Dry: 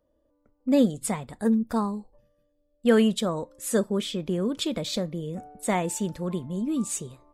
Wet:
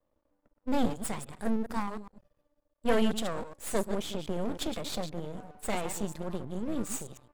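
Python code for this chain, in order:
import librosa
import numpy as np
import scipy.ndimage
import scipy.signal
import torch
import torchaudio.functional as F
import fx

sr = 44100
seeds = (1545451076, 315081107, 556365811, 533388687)

y = fx.reverse_delay(x, sr, ms=104, wet_db=-9.0)
y = np.maximum(y, 0.0)
y = y * librosa.db_to_amplitude(-2.0)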